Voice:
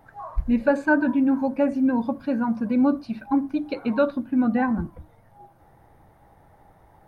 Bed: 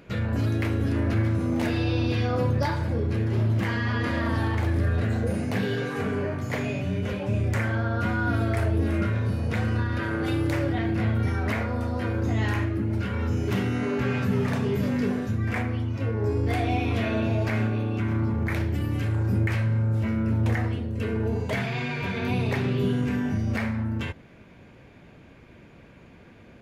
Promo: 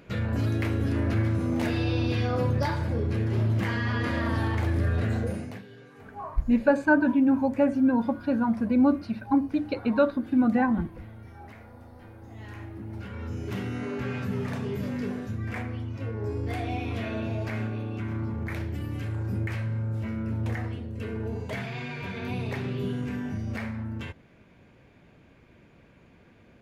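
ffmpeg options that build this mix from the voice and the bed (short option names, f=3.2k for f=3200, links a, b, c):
-filter_complex "[0:a]adelay=6000,volume=-1dB[a];[1:a]volume=13.5dB,afade=t=out:st=5.17:d=0.46:silence=0.105925,afade=t=in:st=12.29:d=1.44:silence=0.177828[b];[a][b]amix=inputs=2:normalize=0"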